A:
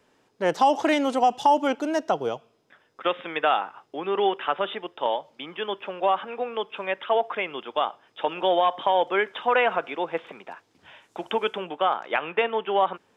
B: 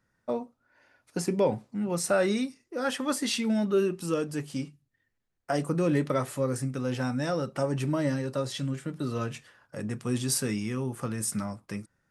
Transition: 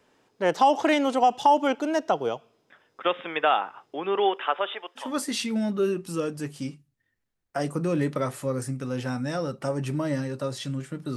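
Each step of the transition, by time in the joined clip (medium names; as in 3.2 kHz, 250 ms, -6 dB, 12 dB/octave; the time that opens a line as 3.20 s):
A
4.17–5.11 s: high-pass 210 Hz -> 930 Hz
5.03 s: go over to B from 2.97 s, crossfade 0.16 s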